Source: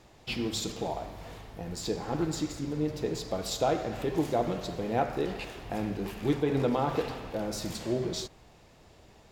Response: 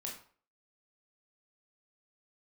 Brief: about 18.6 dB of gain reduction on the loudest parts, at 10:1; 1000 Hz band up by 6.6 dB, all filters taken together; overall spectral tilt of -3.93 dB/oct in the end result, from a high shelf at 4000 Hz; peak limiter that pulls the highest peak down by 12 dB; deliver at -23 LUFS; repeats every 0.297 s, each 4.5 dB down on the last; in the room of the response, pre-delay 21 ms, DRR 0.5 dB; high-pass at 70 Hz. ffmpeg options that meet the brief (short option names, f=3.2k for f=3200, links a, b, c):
-filter_complex "[0:a]highpass=70,equalizer=f=1k:t=o:g=9,highshelf=f=4k:g=8.5,acompressor=threshold=-37dB:ratio=10,alimiter=level_in=9dB:limit=-24dB:level=0:latency=1,volume=-9dB,aecho=1:1:297|594|891|1188|1485|1782|2079|2376|2673:0.596|0.357|0.214|0.129|0.0772|0.0463|0.0278|0.0167|0.01,asplit=2[a][b];[1:a]atrim=start_sample=2205,adelay=21[c];[b][c]afir=irnorm=-1:irlink=0,volume=1dB[d];[a][d]amix=inputs=2:normalize=0,volume=15.5dB"